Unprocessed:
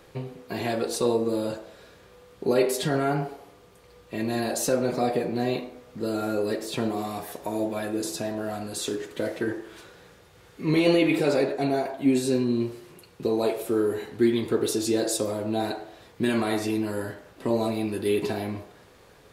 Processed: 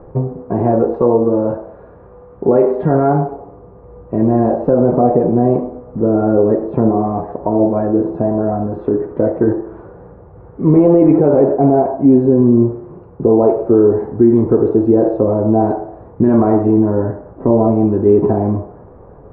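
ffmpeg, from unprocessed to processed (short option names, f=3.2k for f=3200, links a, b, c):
-filter_complex "[0:a]asettb=1/sr,asplit=3[a][b][c];[a]atrim=end=0.944[d];[b]atrim=start=0.94:end=3.33,asetpts=PTS-STARTPTS,afade=t=in:d=0.004:c=qsin,afade=t=out:st=2.386:d=0.004:c=qsin,tiltshelf=f=890:g=-4[e];[c]atrim=start=3.326[f];[d][e]acrossfade=d=0.004:c1=hsin:c2=qsin[g];[g][f]acrossfade=d=0.004:c1=qsin:c2=hsin,lowpass=f=1k:w=0.5412,lowpass=f=1k:w=1.3066,lowshelf=f=120:g=7,alimiter=level_in=15dB:limit=-1dB:release=50:level=0:latency=1,volume=-1dB"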